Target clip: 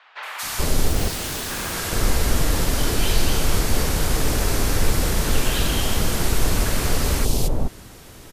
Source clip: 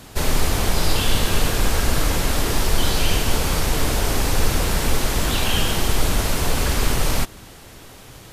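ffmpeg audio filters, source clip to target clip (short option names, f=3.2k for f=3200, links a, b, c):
-filter_complex "[0:a]asettb=1/sr,asplit=3[a][b][c];[a]atrim=end=0.654[d];[b]atrim=start=0.65:end=1.5,asetpts=PTS-STARTPTS,afade=t=in:d=0.004:c=qsin,afade=t=out:st=0.846:d=0.004:c=qsin,aeval=exprs='0.075*(abs(mod(val(0)/0.075+3,4)-2)-1)':c=same[e];[c]atrim=start=1.496[f];[d][e]acrossfade=d=0.004:c1=hsin:c2=qsin[g];[g][f]acrossfade=d=0.004:c1=qsin:c2=hsin,acrossover=split=870|3000[h][i][j];[j]adelay=230[k];[h]adelay=430[l];[l][i][k]amix=inputs=3:normalize=0"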